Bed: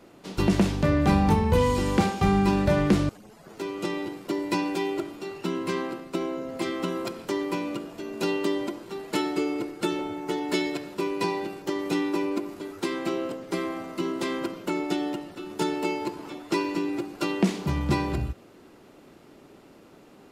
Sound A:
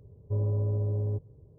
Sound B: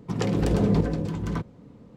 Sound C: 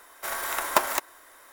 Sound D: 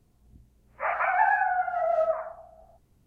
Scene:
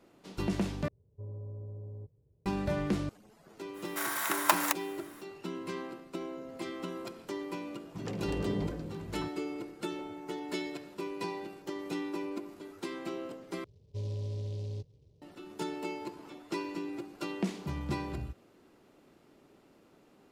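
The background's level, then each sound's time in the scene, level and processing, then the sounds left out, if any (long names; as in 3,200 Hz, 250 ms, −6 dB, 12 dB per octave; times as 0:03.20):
bed −10 dB
0:00.88: overwrite with A −14.5 dB
0:03.73: mix in C −2 dB, fades 0.05 s + high-pass filter 760 Hz
0:07.86: mix in B −13 dB
0:13.64: overwrite with A −8.5 dB + short delay modulated by noise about 3,900 Hz, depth 0.054 ms
not used: D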